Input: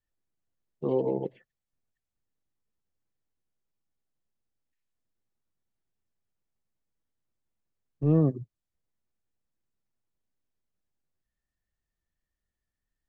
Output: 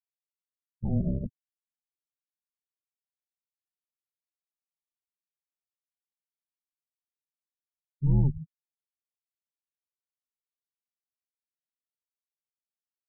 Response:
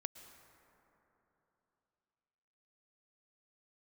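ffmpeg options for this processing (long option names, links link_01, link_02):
-af "afreqshift=-280,asuperstop=centerf=1500:order=4:qfactor=1.2,afftfilt=real='re*gte(hypot(re,im),0.0178)':imag='im*gte(hypot(re,im),0.0178)':win_size=1024:overlap=0.75"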